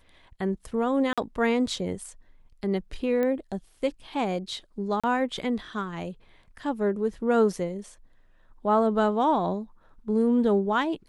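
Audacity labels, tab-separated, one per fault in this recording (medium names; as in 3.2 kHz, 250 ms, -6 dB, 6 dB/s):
1.130000	1.180000	dropout 46 ms
3.230000	3.230000	pop -17 dBFS
5.000000	5.040000	dropout 36 ms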